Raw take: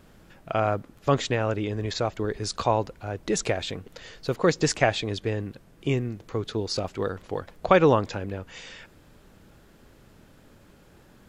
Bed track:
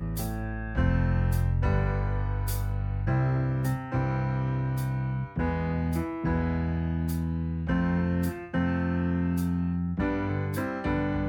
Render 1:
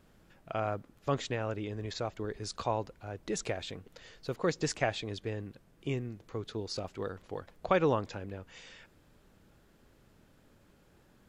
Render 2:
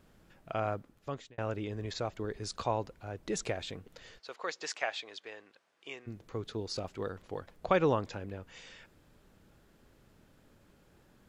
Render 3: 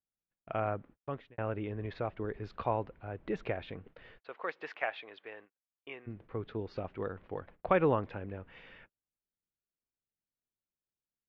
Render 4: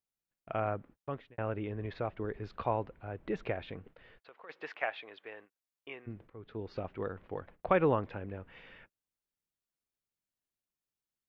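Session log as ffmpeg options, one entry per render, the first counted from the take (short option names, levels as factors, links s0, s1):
-af "volume=0.355"
-filter_complex "[0:a]asplit=3[s0][s1][s2];[s0]afade=t=out:st=4.18:d=0.02[s3];[s1]highpass=780,lowpass=6500,afade=t=in:st=4.18:d=0.02,afade=t=out:st=6.06:d=0.02[s4];[s2]afade=t=in:st=6.06:d=0.02[s5];[s3][s4][s5]amix=inputs=3:normalize=0,asplit=2[s6][s7];[s6]atrim=end=1.38,asetpts=PTS-STARTPTS,afade=t=out:st=0.71:d=0.67[s8];[s7]atrim=start=1.38,asetpts=PTS-STARTPTS,afade=t=in:d=0.004:c=hsin[s9];[s8][s9]concat=n=2:v=0:a=1"
-af "agate=range=0.00891:threshold=0.002:ratio=16:detection=peak,lowpass=f=2700:w=0.5412,lowpass=f=2700:w=1.3066"
-filter_complex "[0:a]asplit=3[s0][s1][s2];[s0]afade=t=out:st=3.95:d=0.02[s3];[s1]acompressor=threshold=0.00178:ratio=2.5:attack=3.2:release=140:knee=1:detection=peak,afade=t=in:st=3.95:d=0.02,afade=t=out:st=4.49:d=0.02[s4];[s2]afade=t=in:st=4.49:d=0.02[s5];[s3][s4][s5]amix=inputs=3:normalize=0,asplit=2[s6][s7];[s6]atrim=end=6.3,asetpts=PTS-STARTPTS,afade=t=out:st=6.296:d=0.004:c=hsin:silence=0.105925[s8];[s7]atrim=start=6.3,asetpts=PTS-STARTPTS,afade=t=in:d=0.42:silence=0.105925[s9];[s8][s9]concat=n=2:v=0:a=1"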